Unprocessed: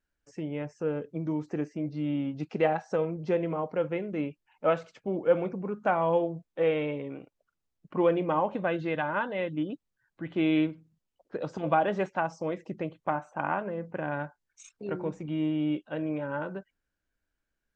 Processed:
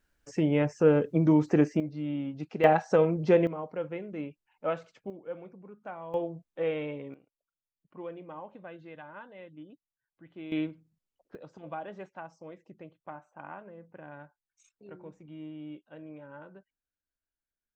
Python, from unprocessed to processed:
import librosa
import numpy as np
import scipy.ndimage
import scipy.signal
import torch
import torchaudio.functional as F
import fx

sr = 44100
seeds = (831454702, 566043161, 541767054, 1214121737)

y = fx.gain(x, sr, db=fx.steps((0.0, 9.0), (1.8, -3.0), (2.64, 5.5), (3.47, -5.5), (5.1, -15.5), (6.14, -4.5), (7.14, -16.5), (10.52, -5.5), (11.35, -14.0)))